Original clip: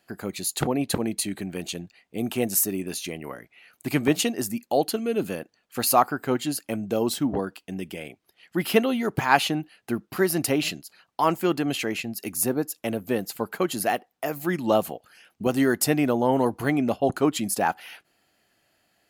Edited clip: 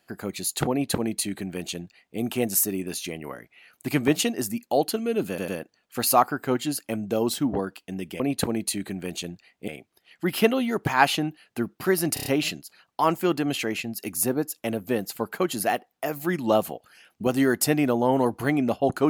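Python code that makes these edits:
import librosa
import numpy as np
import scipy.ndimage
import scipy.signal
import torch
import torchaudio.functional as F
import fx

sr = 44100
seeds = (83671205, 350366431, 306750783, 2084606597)

y = fx.edit(x, sr, fx.duplicate(start_s=0.71, length_s=1.48, to_s=8.0),
    fx.stutter(start_s=5.28, slice_s=0.1, count=3),
    fx.stutter(start_s=10.46, slice_s=0.03, count=5), tone=tone)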